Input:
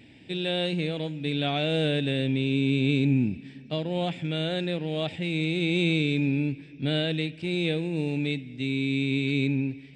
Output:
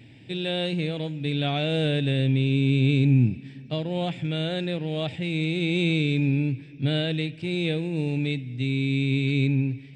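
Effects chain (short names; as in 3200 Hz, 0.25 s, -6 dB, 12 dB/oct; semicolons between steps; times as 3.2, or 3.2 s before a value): bell 120 Hz +12 dB 0.38 oct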